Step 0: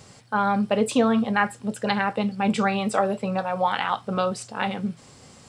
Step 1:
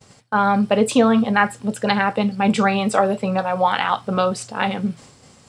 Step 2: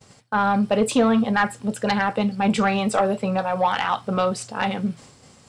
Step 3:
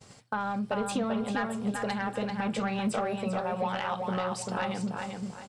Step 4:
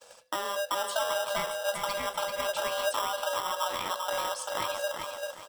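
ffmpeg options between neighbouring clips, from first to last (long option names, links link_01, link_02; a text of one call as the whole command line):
ffmpeg -i in.wav -af "agate=range=-33dB:threshold=-43dB:ratio=3:detection=peak,volume=5dB" out.wav
ffmpeg -i in.wav -af "asoftclip=type=tanh:threshold=-8dB,volume=-1.5dB" out.wav
ffmpeg -i in.wav -filter_complex "[0:a]acompressor=threshold=-27dB:ratio=6,asplit=2[link_01][link_02];[link_02]adelay=391,lowpass=frequency=4200:poles=1,volume=-4dB,asplit=2[link_03][link_04];[link_04]adelay=391,lowpass=frequency=4200:poles=1,volume=0.34,asplit=2[link_05][link_06];[link_06]adelay=391,lowpass=frequency=4200:poles=1,volume=0.34,asplit=2[link_07][link_08];[link_08]adelay=391,lowpass=frequency=4200:poles=1,volume=0.34[link_09];[link_03][link_05][link_07][link_09]amix=inputs=4:normalize=0[link_10];[link_01][link_10]amix=inputs=2:normalize=0,volume=-2dB" out.wav
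ffmpeg -i in.wav -filter_complex "[0:a]afreqshift=390,acrossover=split=1900[link_01][link_02];[link_01]acrusher=samples=20:mix=1:aa=0.000001[link_03];[link_03][link_02]amix=inputs=2:normalize=0" out.wav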